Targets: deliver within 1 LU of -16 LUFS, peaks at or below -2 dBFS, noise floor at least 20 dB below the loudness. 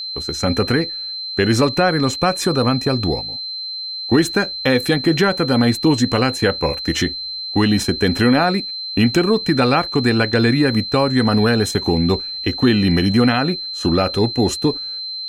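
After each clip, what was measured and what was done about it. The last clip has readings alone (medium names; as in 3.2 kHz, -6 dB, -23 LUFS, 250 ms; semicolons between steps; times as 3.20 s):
tick rate 34 per s; steady tone 4.1 kHz; tone level -25 dBFS; loudness -17.5 LUFS; peak level -4.0 dBFS; loudness target -16.0 LUFS
-> de-click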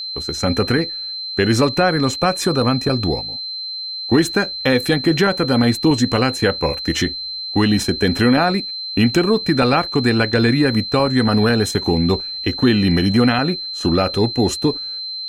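tick rate 0.13 per s; steady tone 4.1 kHz; tone level -25 dBFS
-> band-stop 4.1 kHz, Q 30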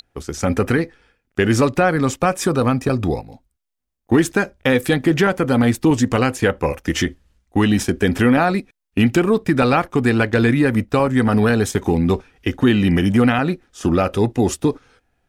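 steady tone not found; loudness -18.0 LUFS; peak level -5.0 dBFS; loudness target -16.0 LUFS
-> trim +2 dB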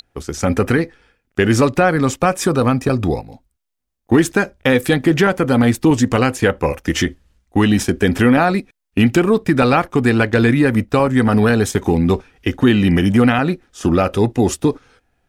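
loudness -16.0 LUFS; peak level -3.0 dBFS; noise floor -72 dBFS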